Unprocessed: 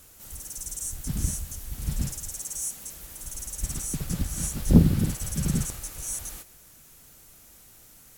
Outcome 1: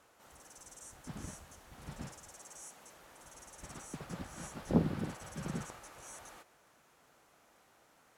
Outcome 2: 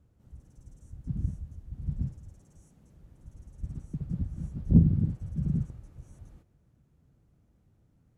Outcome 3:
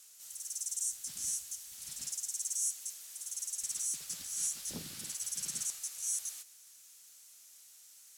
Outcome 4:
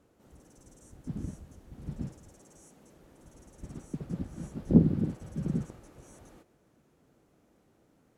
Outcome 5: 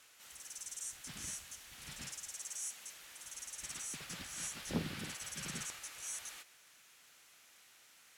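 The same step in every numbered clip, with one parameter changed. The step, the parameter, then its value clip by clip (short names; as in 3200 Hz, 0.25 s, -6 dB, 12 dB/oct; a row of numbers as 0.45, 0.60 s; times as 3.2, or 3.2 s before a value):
band-pass, frequency: 890, 110, 6300, 330, 2400 Hz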